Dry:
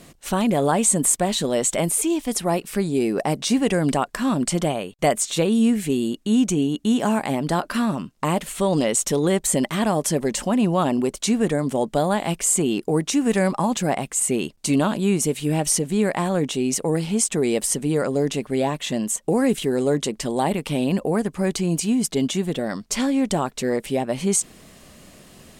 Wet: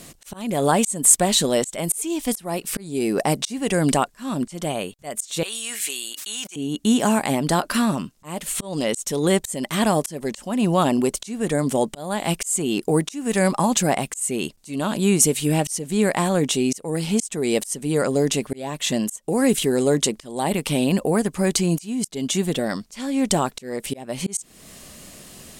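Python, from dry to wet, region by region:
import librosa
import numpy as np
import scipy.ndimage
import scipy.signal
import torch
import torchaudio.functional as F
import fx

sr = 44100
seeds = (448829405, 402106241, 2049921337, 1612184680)

y = fx.chain(x, sr, fx.highpass(hz=1400.0, slope=12),
    fx.sustainer(db_per_s=30.0), at=(5.43, 6.56))
y = fx.high_shelf(y, sr, hz=4900.0, db=11.5)
y = fx.auto_swell(y, sr, attack_ms=364.0)
y = fx.high_shelf(y, sr, hz=12000.0, db=-5.5)
y = y * librosa.db_to_amplitude(1.5)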